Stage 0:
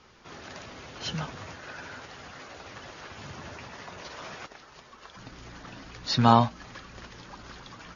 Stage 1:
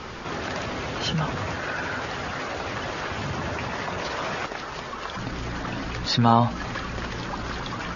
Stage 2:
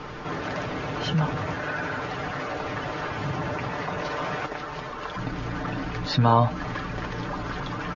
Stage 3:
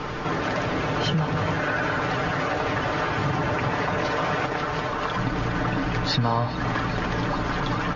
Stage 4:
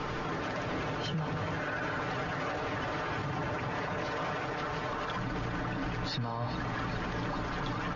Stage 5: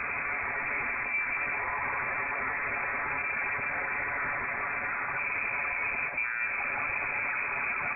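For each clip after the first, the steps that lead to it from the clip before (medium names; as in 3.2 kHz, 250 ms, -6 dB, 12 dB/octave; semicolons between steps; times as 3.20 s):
treble shelf 4.1 kHz -8.5 dB; level flattener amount 50%
treble shelf 3.3 kHz -10.5 dB; comb 6.7 ms, depth 50%
compression 4:1, threshold -28 dBFS, peak gain reduction 12.5 dB; feedback echo behind a low-pass 407 ms, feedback 82%, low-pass 3.5 kHz, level -13 dB; reverberation RT60 2.7 s, pre-delay 137 ms, DRR 14 dB; trim +6.5 dB
peak limiter -21.5 dBFS, peak gain reduction 10 dB; trim -4.5 dB
frequency inversion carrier 2.5 kHz; trim +2.5 dB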